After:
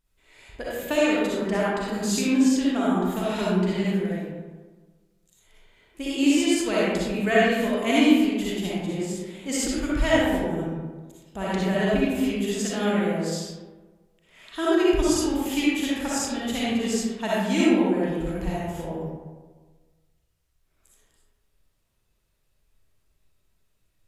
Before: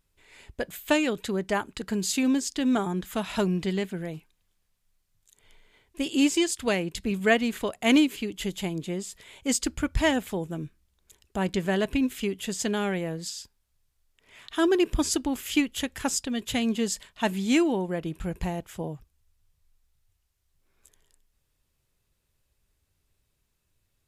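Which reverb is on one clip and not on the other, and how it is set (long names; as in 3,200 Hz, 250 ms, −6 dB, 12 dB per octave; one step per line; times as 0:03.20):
comb and all-pass reverb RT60 1.4 s, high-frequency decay 0.45×, pre-delay 20 ms, DRR −8 dB
level −5.5 dB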